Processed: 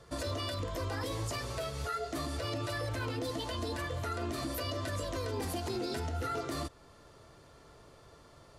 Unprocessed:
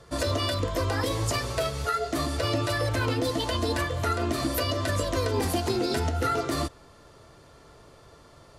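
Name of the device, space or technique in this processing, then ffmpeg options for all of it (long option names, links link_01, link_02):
stacked limiters: -af "alimiter=limit=-19.5dB:level=0:latency=1:release=21,alimiter=limit=-23dB:level=0:latency=1:release=266,volume=-4.5dB"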